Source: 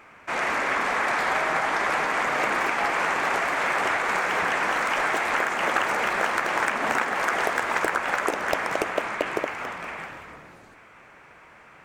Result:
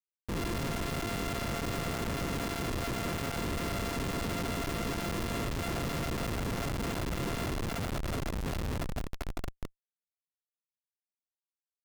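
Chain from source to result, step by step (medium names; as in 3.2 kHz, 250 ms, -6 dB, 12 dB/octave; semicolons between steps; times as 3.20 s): sorted samples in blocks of 64 samples; Schmitt trigger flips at -22 dBFS; trim -6.5 dB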